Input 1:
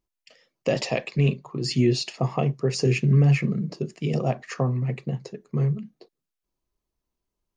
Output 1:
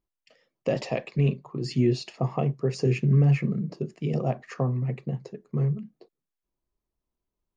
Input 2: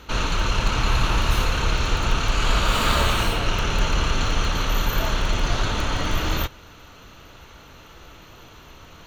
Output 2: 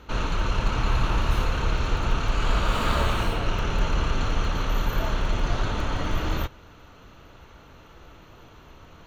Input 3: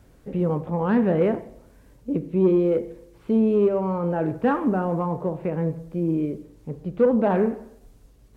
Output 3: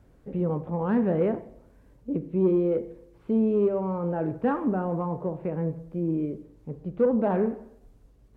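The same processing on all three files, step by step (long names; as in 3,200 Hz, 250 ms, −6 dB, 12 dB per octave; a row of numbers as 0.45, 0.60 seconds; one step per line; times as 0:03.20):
high-shelf EQ 2,300 Hz −9 dB
loudness normalisation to −27 LKFS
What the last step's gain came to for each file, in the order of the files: −2.0, −2.0, −3.5 decibels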